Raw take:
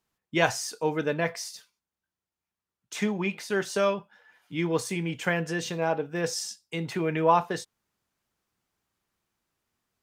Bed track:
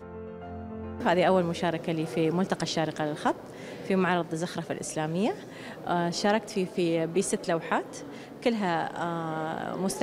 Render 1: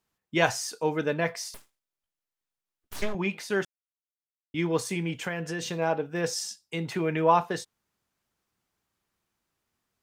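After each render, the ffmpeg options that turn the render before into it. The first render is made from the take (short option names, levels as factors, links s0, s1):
-filter_complex "[0:a]asettb=1/sr,asplit=3[s0][s1][s2];[s0]atrim=end=1.544[s3];[s1]atrim=start=1.54:end=3.15,asetpts=PTS-STARTPTS,afade=t=in:d=0.004:c=qsin,afade=t=out:st=1.606:d=0.004:c=qsin,aeval=exprs='abs(val(0))':c=same[s4];[s2]atrim=start=3.146[s5];[s3][s4]acrossfade=d=0.004:c1=hsin:c2=qsin[s6];[s6][s5]acrossfade=d=0.004:c1=qsin:c2=hsin,asettb=1/sr,asplit=3[s7][s8][s9];[s7]atrim=end=5.124[s10];[s8]atrim=start=5.12:end=5.62,asetpts=PTS-STARTPTS,afade=t=in:d=0.004:c=qsin,afade=t=out:st=0.496:d=0.004:c=qsin,acompressor=threshold=0.0355:ratio=2.5:attack=3.2:release=140:knee=1:detection=peak[s11];[s9]atrim=start=5.616[s12];[s10][s11]acrossfade=d=0.004:c1=hsin:c2=qsin[s13];[s13][s12]acrossfade=d=0.004:c1=qsin:c2=hsin,asplit=3[s14][s15][s16];[s14]atrim=end=3.65,asetpts=PTS-STARTPTS,afade=t=out:st=3.646:d=0.004:c=hsin[s17];[s15]atrim=start=3.65:end=4.54,asetpts=PTS-STARTPTS,volume=0[s18];[s16]atrim=start=4.54,asetpts=PTS-STARTPTS,afade=t=in:d=0.004:c=hsin[s19];[s17][s18][s19]concat=n=3:v=0:a=1"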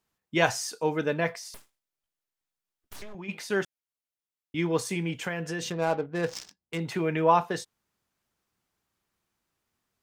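-filter_complex "[0:a]asplit=3[s0][s1][s2];[s0]afade=t=out:st=1.35:d=0.02[s3];[s1]acompressor=threshold=0.0126:ratio=5:attack=3.2:release=140:knee=1:detection=peak,afade=t=in:st=1.35:d=0.02,afade=t=out:st=3.28:d=0.02[s4];[s2]afade=t=in:st=3.28:d=0.02[s5];[s3][s4][s5]amix=inputs=3:normalize=0,asettb=1/sr,asplit=3[s6][s7][s8];[s6]atrim=end=5.704[s9];[s7]atrim=start=5.7:end=6.8,asetpts=PTS-STARTPTS,afade=t=in:d=0.004:c=qsin,afade=t=out:st=1.096:d=0.004:c=qsin,adynamicsmooth=sensitivity=7:basefreq=710[s10];[s8]atrim=start=6.796[s11];[s9][s10]acrossfade=d=0.004:c1=hsin:c2=qsin[s12];[s12][s11]acrossfade=d=0.004:c1=qsin:c2=hsin"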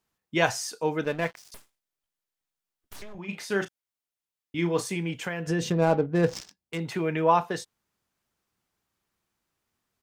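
-filter_complex "[0:a]asettb=1/sr,asplit=3[s0][s1][s2];[s0]atrim=end=1.044[s3];[s1]atrim=start=1.04:end=1.52,asetpts=PTS-STARTPTS,afade=t=in:d=0.004:c=qsin,afade=t=out:st=0.476:d=0.004:c=qsin,aeval=exprs='sgn(val(0))*max(abs(val(0))-0.00944,0)':c=same[s4];[s2]atrim=start=1.516[s5];[s3][s4]acrossfade=d=0.004:c1=hsin:c2=qsin[s6];[s6][s5]acrossfade=d=0.004:c1=qsin:c2=hsin,asplit=3[s7][s8][s9];[s7]afade=t=out:st=3.15:d=0.02[s10];[s8]asplit=2[s11][s12];[s12]adelay=35,volume=0.376[s13];[s11][s13]amix=inputs=2:normalize=0,afade=t=in:st=3.15:d=0.02,afade=t=out:st=4.85:d=0.02[s14];[s9]afade=t=in:st=4.85:d=0.02[s15];[s10][s14][s15]amix=inputs=3:normalize=0,asettb=1/sr,asplit=3[s16][s17][s18];[s16]atrim=end=5.474[s19];[s17]atrim=start=5.47:end=6.41,asetpts=PTS-STARTPTS,afade=t=in:d=0.004:c=qsin,afade=t=out:st=0.936:d=0.004:c=qsin,lowshelf=f=480:g=10.5[s20];[s18]atrim=start=6.406[s21];[s19][s20]acrossfade=d=0.004:c1=hsin:c2=qsin[s22];[s22][s21]acrossfade=d=0.004:c1=qsin:c2=hsin"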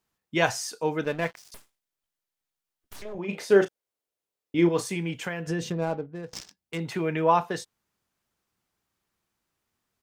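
-filter_complex "[0:a]asettb=1/sr,asplit=3[s0][s1][s2];[s0]atrim=end=3.054[s3];[s1]atrim=start=3.05:end=4.69,asetpts=PTS-STARTPTS,afade=t=in:d=0.004:c=qsin,afade=t=out:st=1.636:d=0.004:c=qsin,equalizer=f=470:t=o:w=1.3:g=12.5[s4];[s2]atrim=start=4.686[s5];[s3][s4]acrossfade=d=0.004:c1=hsin:c2=qsin[s6];[s6][s5]acrossfade=d=0.004:c1=qsin:c2=hsin,asplit=2[s7][s8];[s7]atrim=end=6.33,asetpts=PTS-STARTPTS,afade=t=out:st=5.29:d=1.04:silence=0.0668344[s9];[s8]atrim=start=6.33,asetpts=PTS-STARTPTS,afade=t=in:d=0.004:c=hsin:silence=0.0668344[s10];[s9][s10]concat=n=2:v=0:a=1"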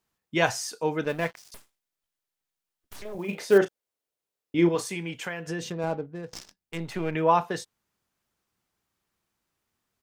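-filter_complex "[0:a]asettb=1/sr,asplit=3[s0][s1][s2];[s0]atrim=end=1.094[s3];[s1]atrim=start=1.09:end=3.58,asetpts=PTS-STARTPTS,afade=t=in:d=0.004:c=qsin,afade=t=out:st=2.486:d=0.004:c=qsin,acrusher=bits=7:mode=log:mix=0:aa=0.000001[s4];[s2]atrim=start=3.576[s5];[s3][s4]acrossfade=d=0.004:c1=hsin:c2=qsin[s6];[s6][s5]acrossfade=d=0.004:c1=qsin:c2=hsin,asettb=1/sr,asplit=3[s7][s8][s9];[s7]atrim=end=4.754[s10];[s8]atrim=start=4.75:end=5.84,asetpts=PTS-STARTPTS,afade=t=in:d=0.004:c=qsin,afade=t=out:st=1.086:d=0.004:c=qsin,lowshelf=f=320:g=-6.5[s11];[s9]atrim=start=5.836[s12];[s10][s11]acrossfade=d=0.004:c1=hsin:c2=qsin[s13];[s13][s12]acrossfade=d=0.004:c1=qsin:c2=hsin,asettb=1/sr,asplit=3[s14][s15][s16];[s14]atrim=end=6.344[s17];[s15]atrim=start=6.34:end=7.15,asetpts=PTS-STARTPTS,afade=t=in:d=0.004:c=qsin,afade=t=out:st=0.806:d=0.004:c=qsin,aeval=exprs='if(lt(val(0),0),0.447*val(0),val(0))':c=same[s18];[s16]atrim=start=7.146[s19];[s17][s18]acrossfade=d=0.004:c1=hsin:c2=qsin[s20];[s20][s19]acrossfade=d=0.004:c1=qsin:c2=hsin"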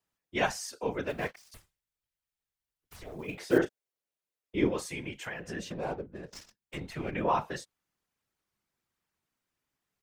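-filter_complex "[0:a]afftfilt=real='hypot(re,im)*cos(2*PI*random(0))':imag='hypot(re,im)*sin(2*PI*random(1))':win_size=512:overlap=0.75,acrossover=split=200|1400|2100[s0][s1][s2][s3];[s2]crystalizer=i=5:c=0[s4];[s0][s1][s4][s3]amix=inputs=4:normalize=0"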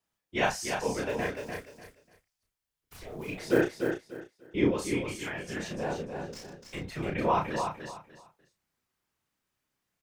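-filter_complex "[0:a]asplit=2[s0][s1];[s1]adelay=32,volume=0.668[s2];[s0][s2]amix=inputs=2:normalize=0,asplit=2[s3][s4];[s4]aecho=0:1:296|592|888:0.501|0.12|0.0289[s5];[s3][s5]amix=inputs=2:normalize=0"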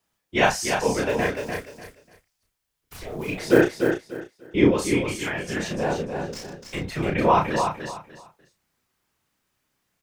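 -af "volume=2.51"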